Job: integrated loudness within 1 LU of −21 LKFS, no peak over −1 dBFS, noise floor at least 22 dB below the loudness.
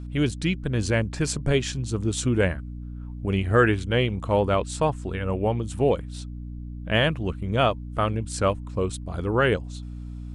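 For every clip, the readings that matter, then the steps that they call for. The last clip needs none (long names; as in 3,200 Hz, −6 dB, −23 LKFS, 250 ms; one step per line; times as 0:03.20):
mains hum 60 Hz; hum harmonics up to 300 Hz; level of the hum −32 dBFS; integrated loudness −25.0 LKFS; sample peak −6.0 dBFS; target loudness −21.0 LKFS
→ hum removal 60 Hz, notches 5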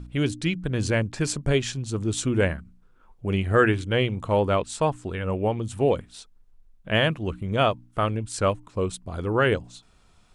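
mains hum none found; integrated loudness −25.0 LKFS; sample peak −5.5 dBFS; target loudness −21.0 LKFS
→ level +4 dB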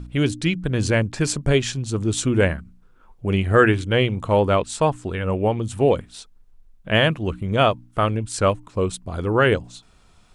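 integrated loudness −21.0 LKFS; sample peak −1.5 dBFS; background noise floor −54 dBFS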